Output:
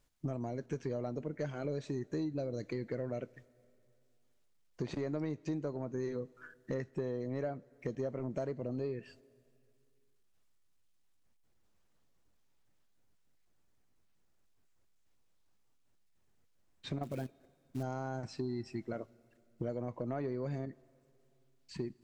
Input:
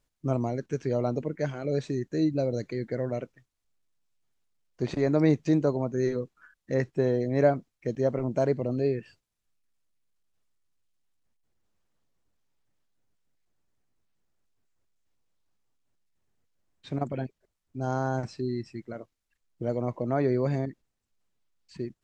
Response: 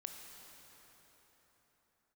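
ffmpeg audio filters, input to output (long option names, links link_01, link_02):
-filter_complex "[0:a]acompressor=threshold=-35dB:ratio=8,asoftclip=type=tanh:threshold=-27dB,asettb=1/sr,asplit=3[link_01][link_02][link_03];[link_01]atrim=end=17.034[link_04];[link_02]atrim=start=17.03:end=17.83,asetpts=PTS-STARTPTS,afade=type=in:duration=0.004:curve=qsin,afade=type=out:start_time=0.796:duration=0.004:curve=qsin,acrusher=bits=5:mode=log:mix=0:aa=0.000001[link_05];[link_03]atrim=start=17.826[link_06];[link_04][link_05]acrossfade=duration=0.004:curve1=hsin:curve2=qsin[link_07];[link_07][link_06]acrossfade=duration=0.004:curve1=qsin:curve2=hsin,asplit=2[link_08][link_09];[1:a]atrim=start_sample=2205,asetrate=70560,aresample=44100,adelay=20[link_10];[link_09][link_10]afir=irnorm=-1:irlink=0,volume=-12dB[link_11];[link_08][link_11]amix=inputs=2:normalize=0,volume=2dB"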